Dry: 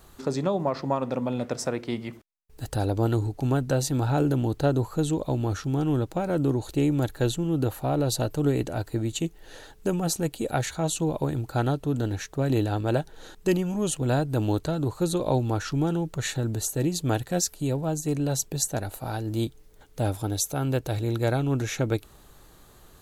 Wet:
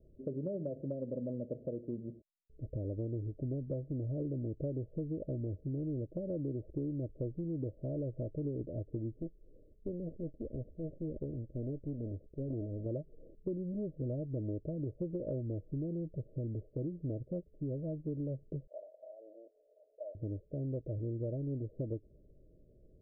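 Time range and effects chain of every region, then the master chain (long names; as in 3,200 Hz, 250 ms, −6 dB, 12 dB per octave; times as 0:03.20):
0:09.21–0:12.86: lower of the sound and its delayed copy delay 0.67 ms + parametric band 150 Hz −4 dB 2.3 octaves
0:18.67–0:20.15: elliptic high-pass filter 660 Hz, stop band 80 dB + spectral tilt −2 dB per octave + envelope flattener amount 50%
whole clip: Chebyshev low-pass filter 630 Hz, order 8; downward compressor, threshold −27 dBFS; level −7 dB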